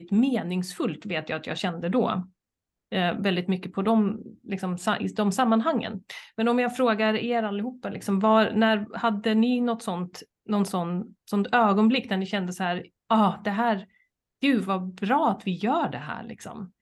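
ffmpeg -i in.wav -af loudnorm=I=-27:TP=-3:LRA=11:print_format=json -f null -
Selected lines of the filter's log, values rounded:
"input_i" : "-25.7",
"input_tp" : "-8.5",
"input_lra" : "3.3",
"input_thresh" : "-36.2",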